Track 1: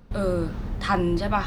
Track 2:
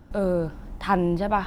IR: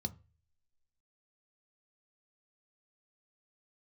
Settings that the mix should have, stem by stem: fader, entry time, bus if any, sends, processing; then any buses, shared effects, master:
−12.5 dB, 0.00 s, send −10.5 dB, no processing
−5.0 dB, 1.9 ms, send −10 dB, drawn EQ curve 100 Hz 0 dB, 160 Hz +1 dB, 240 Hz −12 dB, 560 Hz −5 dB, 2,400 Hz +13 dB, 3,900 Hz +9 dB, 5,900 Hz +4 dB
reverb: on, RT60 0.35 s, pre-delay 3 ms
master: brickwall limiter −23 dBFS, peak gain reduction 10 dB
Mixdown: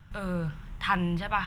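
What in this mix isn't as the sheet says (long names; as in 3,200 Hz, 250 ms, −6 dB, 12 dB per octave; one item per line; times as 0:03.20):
stem 1 −12.5 dB → −20.0 dB
master: missing brickwall limiter −23 dBFS, peak gain reduction 10 dB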